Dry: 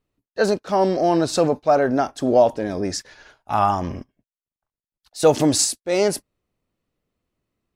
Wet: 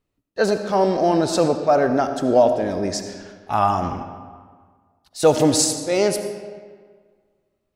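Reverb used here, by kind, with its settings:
comb and all-pass reverb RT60 1.7 s, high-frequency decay 0.7×, pre-delay 35 ms, DRR 8 dB

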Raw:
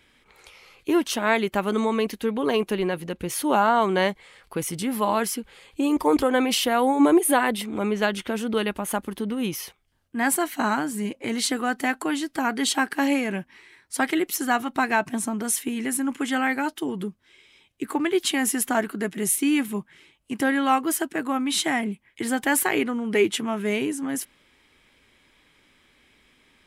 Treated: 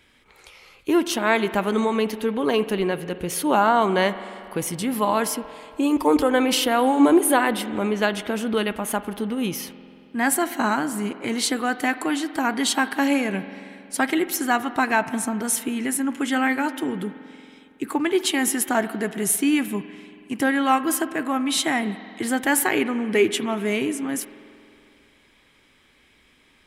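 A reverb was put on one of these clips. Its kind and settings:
spring reverb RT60 2.6 s, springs 46 ms, chirp 45 ms, DRR 13 dB
level +1.5 dB

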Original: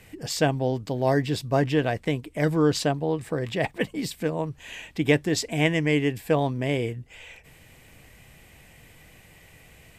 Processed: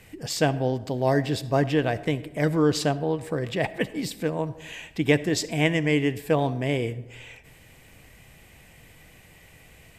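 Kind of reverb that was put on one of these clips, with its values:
comb and all-pass reverb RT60 1.1 s, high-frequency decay 0.45×, pre-delay 25 ms, DRR 16 dB

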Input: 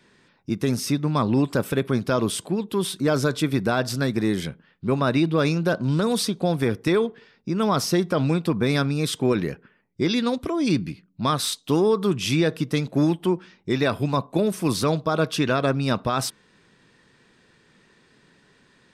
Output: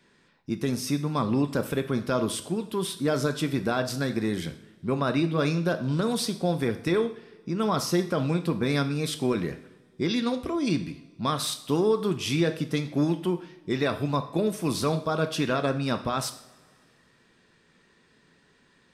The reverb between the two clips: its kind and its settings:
coupled-rooms reverb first 0.53 s, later 2.1 s, from −19 dB, DRR 7.5 dB
level −4.5 dB

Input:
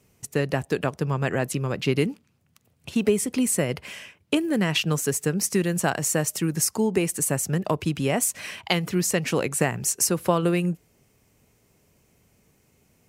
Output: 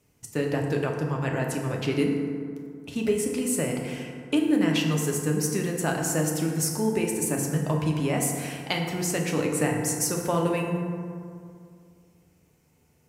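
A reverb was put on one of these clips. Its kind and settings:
feedback delay network reverb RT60 2.3 s, low-frequency decay 1.1×, high-frequency decay 0.4×, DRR 0 dB
level −5.5 dB

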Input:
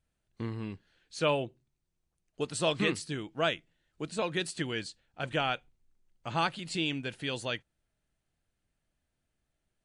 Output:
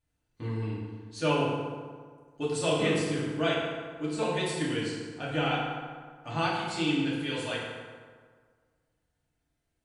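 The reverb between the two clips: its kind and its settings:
feedback delay network reverb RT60 1.7 s, low-frequency decay 1×, high-frequency decay 0.6×, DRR −7 dB
level −5.5 dB

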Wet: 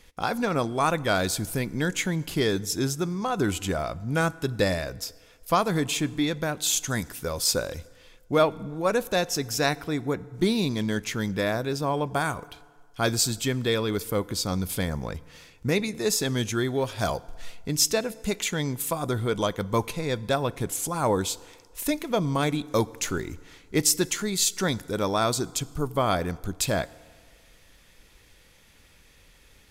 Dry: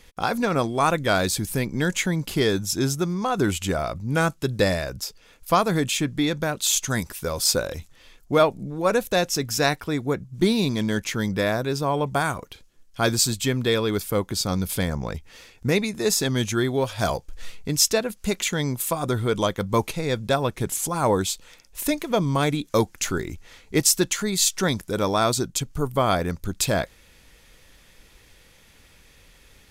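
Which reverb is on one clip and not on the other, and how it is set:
feedback delay network reverb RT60 1.7 s, low-frequency decay 0.85×, high-frequency decay 0.65×, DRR 19 dB
level −3 dB

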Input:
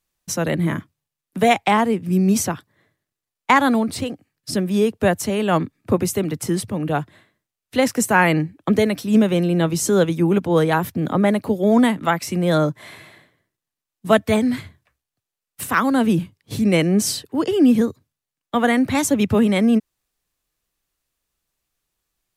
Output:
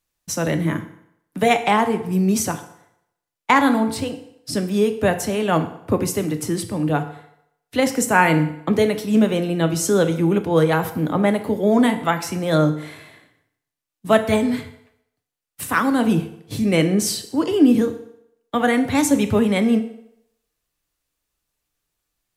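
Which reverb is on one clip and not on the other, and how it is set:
feedback delay network reverb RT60 0.76 s, low-frequency decay 0.8×, high-frequency decay 0.85×, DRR 7 dB
level −1 dB

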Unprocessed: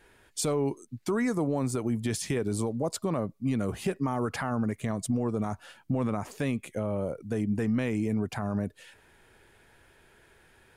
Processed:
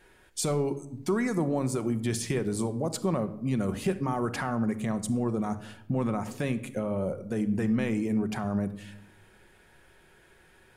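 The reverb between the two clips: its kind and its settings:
rectangular room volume 2,500 cubic metres, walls furnished, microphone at 1 metre

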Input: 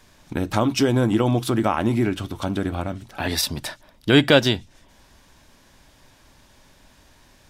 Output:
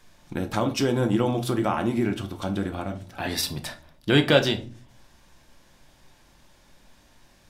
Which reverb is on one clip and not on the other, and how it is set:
rectangular room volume 310 cubic metres, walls furnished, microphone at 0.85 metres
level −4.5 dB

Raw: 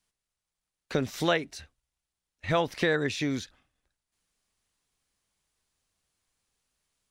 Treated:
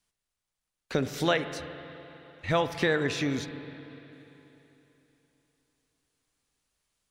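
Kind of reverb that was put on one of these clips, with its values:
spring reverb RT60 3.4 s, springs 37/42/49 ms, chirp 30 ms, DRR 9.5 dB

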